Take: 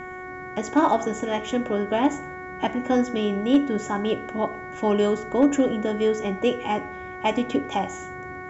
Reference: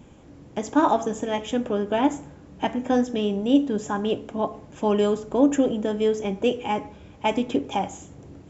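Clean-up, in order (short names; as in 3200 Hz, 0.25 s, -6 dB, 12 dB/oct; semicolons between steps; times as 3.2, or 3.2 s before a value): clip repair -10 dBFS; de-hum 368.6 Hz, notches 6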